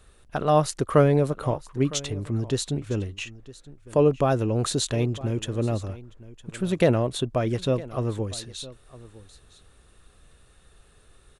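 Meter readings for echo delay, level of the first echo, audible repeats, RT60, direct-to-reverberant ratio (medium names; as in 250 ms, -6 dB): 959 ms, -19.0 dB, 1, no reverb, no reverb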